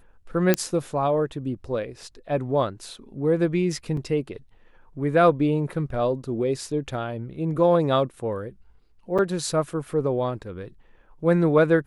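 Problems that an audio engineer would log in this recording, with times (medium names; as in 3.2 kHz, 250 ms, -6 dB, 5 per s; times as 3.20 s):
0.54 s: pop -4 dBFS
3.97 s: dropout 3 ms
9.18–9.19 s: dropout 6.3 ms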